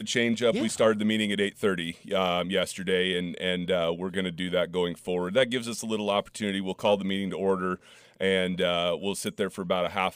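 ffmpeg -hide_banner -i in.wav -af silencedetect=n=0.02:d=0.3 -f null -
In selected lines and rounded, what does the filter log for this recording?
silence_start: 7.75
silence_end: 8.21 | silence_duration: 0.46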